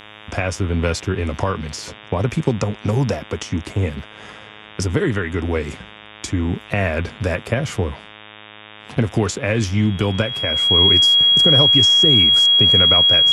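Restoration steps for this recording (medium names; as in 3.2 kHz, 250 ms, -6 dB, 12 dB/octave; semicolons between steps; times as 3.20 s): de-hum 106 Hz, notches 35; band-stop 3.3 kHz, Q 30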